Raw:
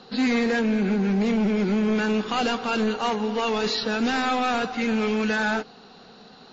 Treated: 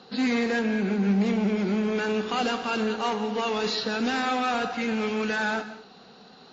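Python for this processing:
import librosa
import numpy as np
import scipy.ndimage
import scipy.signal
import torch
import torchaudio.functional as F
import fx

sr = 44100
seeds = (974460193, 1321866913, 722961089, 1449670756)

y = fx.highpass(x, sr, hz=74.0, slope=6)
y = fx.rev_gated(y, sr, seeds[0], gate_ms=240, shape='flat', drr_db=10.5)
y = y * librosa.db_to_amplitude(-2.5)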